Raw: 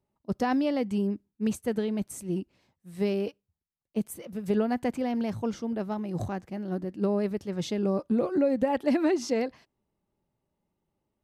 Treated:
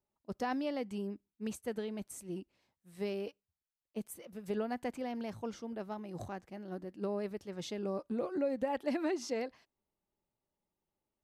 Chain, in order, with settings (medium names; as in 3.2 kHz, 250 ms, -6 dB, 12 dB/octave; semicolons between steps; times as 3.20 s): peaking EQ 130 Hz -7 dB 2.5 oct; trim -6.5 dB